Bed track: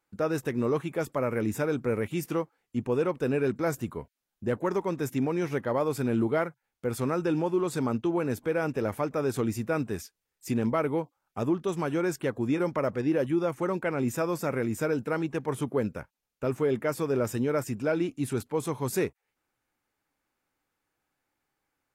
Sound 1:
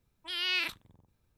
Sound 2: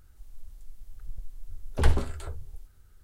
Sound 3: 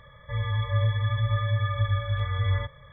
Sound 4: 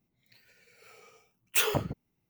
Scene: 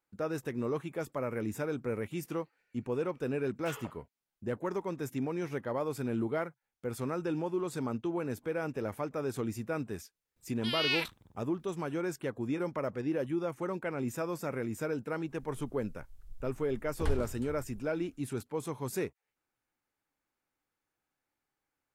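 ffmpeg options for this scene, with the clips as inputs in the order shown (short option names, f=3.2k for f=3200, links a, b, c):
-filter_complex "[0:a]volume=-6.5dB[a];[4:a]bandpass=f=1.4k:t=q:w=0.91:csg=0,atrim=end=2.29,asetpts=PTS-STARTPTS,volume=-11.5dB,afade=t=in:d=0.004:c=hsin,afade=t=out:st=2.286:d=0.004:c=hsin,adelay=2100[b];[1:a]atrim=end=1.37,asetpts=PTS-STARTPTS,volume=-0.5dB,afade=t=in:d=0.004:c=hsin,afade=t=out:st=1.366:d=0.004:c=hsin,adelay=10360[c];[2:a]atrim=end=3.03,asetpts=PTS-STARTPTS,volume=-10.5dB,afade=t=in:d=0.1,afade=t=out:st=2.93:d=0.1,adelay=15220[d];[a][b][c][d]amix=inputs=4:normalize=0"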